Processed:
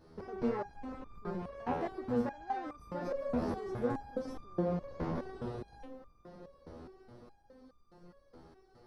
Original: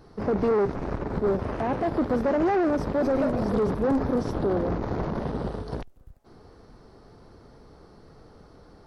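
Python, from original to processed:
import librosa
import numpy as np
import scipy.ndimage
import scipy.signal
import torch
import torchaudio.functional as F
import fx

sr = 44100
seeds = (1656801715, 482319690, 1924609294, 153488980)

y = fx.echo_diffused(x, sr, ms=1135, feedback_pct=46, wet_db=-14.0)
y = fx.resonator_held(y, sr, hz=4.8, low_hz=82.0, high_hz=1200.0)
y = y * librosa.db_to_amplitude(1.5)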